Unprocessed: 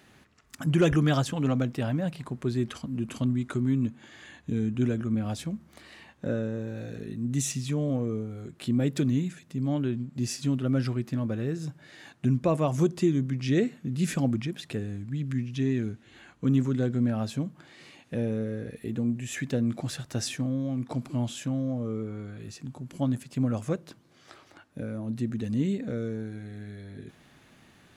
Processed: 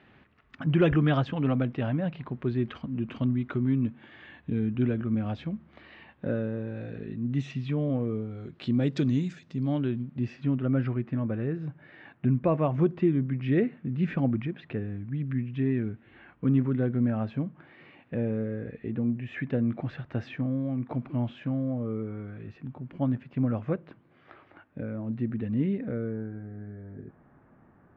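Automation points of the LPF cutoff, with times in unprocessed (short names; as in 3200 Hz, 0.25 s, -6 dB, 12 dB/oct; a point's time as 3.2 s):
LPF 24 dB/oct
8.01 s 3100 Hz
9.29 s 6100 Hz
10.38 s 2500 Hz
25.77 s 2500 Hz
26.45 s 1400 Hz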